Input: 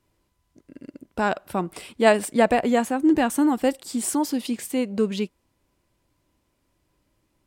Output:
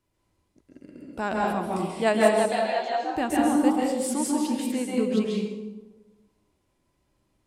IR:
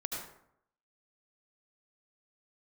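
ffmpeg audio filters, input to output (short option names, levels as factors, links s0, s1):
-filter_complex "[0:a]asettb=1/sr,asplit=3[s0][s1][s2];[s0]atrim=end=2.344[s3];[s1]atrim=start=2.34:end=3.16,asetpts=PTS-STARTPTS,afade=t=in:d=0.004:c=qsin,afade=t=out:st=0.816:d=0.004:c=qsin,highpass=f=470:w=0.5412,highpass=f=470:w=1.3066,equalizer=f=500:t=q:w=4:g=-10,equalizer=f=1100:t=q:w=4:g=-7,equalizer=f=2200:t=q:w=4:g=-5,equalizer=f=4200:t=q:w=4:g=9,lowpass=f=5000:w=0.5412,lowpass=f=5000:w=1.3066[s4];[s2]atrim=start=3.156[s5];[s3][s4]acrossfade=d=0.004:c1=hsin:c2=qsin[s6];[s6][s5]acrossfade=d=0.004:c1=qsin:c2=hsin[s7];[1:a]atrim=start_sample=2205,asetrate=24255,aresample=44100[s8];[s7][s8]afir=irnorm=-1:irlink=0,volume=0.422"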